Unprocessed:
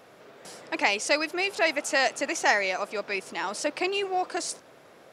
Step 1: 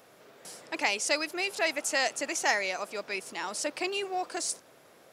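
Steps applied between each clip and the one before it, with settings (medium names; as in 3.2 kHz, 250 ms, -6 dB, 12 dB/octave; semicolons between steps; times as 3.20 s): treble shelf 6.4 kHz +11 dB; trim -5 dB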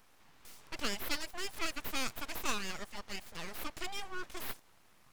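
full-wave rectifier; trim -5.5 dB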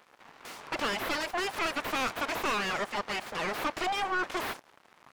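crossover distortion -59.5 dBFS; overdrive pedal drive 30 dB, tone 1.1 kHz, clips at -16.5 dBFS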